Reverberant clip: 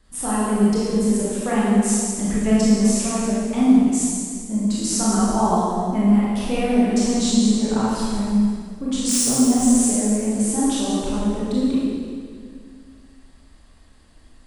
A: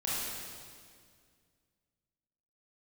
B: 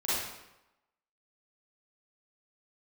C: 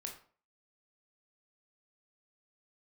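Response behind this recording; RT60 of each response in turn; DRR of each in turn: A; 2.0 s, 0.95 s, 0.45 s; -8.0 dB, -11.5 dB, 1.0 dB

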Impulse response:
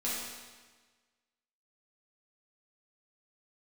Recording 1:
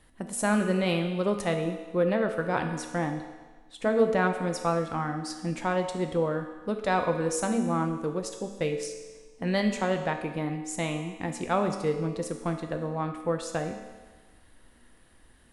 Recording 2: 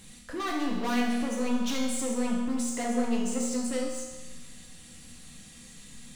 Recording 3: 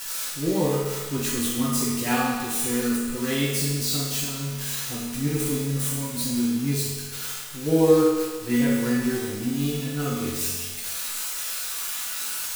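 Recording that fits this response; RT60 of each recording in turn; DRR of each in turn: 3; 1.4 s, 1.4 s, 1.4 s; 4.5 dB, -3.0 dB, -8.5 dB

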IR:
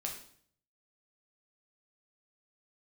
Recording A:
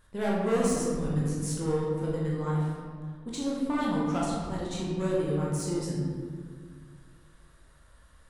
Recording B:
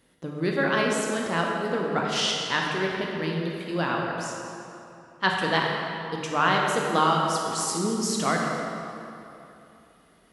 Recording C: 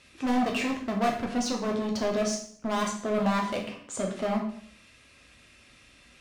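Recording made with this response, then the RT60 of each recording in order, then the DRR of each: C; 1.9 s, 2.9 s, 0.55 s; -5.5 dB, -1.5 dB, -0.5 dB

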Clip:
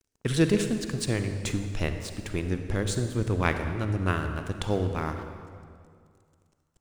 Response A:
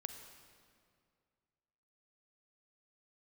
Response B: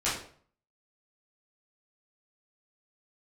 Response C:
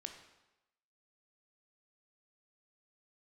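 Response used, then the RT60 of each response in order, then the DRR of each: A; 2.2 s, 0.50 s, 1.0 s; 6.5 dB, -11.0 dB, 4.5 dB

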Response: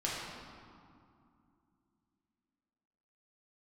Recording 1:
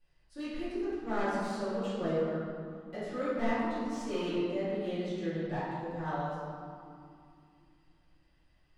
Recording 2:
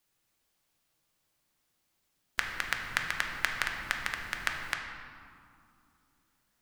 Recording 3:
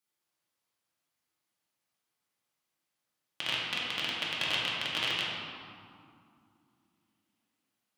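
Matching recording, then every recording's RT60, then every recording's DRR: 3; 2.5 s, 2.5 s, 2.5 s; -14.0 dB, 2.0 dB, -6.5 dB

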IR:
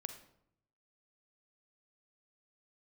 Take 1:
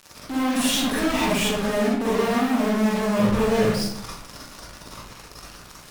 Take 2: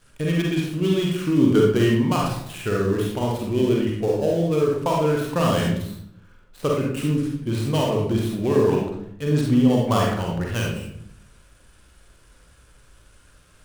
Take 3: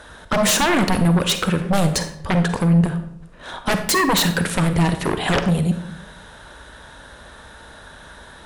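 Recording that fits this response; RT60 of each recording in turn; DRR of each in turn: 3; 0.70 s, 0.70 s, 0.75 s; -7.0 dB, -2.0 dB, 8.0 dB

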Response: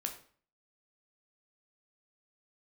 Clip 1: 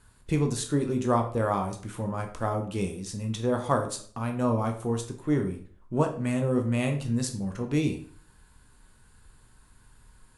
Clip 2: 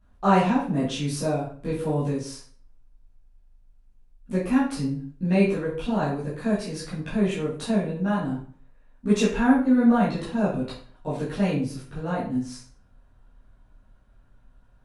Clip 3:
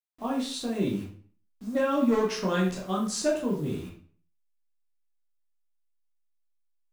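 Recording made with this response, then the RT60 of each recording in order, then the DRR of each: 1; 0.45 s, 0.45 s, 0.45 s; 3.5 dB, -11.5 dB, -4.0 dB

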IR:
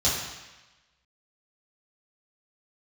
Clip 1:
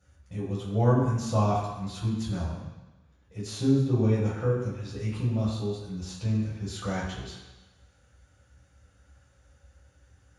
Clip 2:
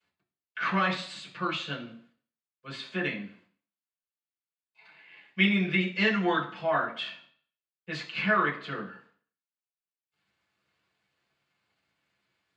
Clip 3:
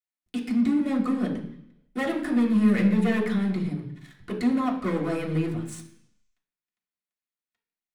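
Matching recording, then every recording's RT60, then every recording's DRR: 1; 1.1 s, 0.50 s, 0.70 s; -8.5 dB, -5.0 dB, -4.0 dB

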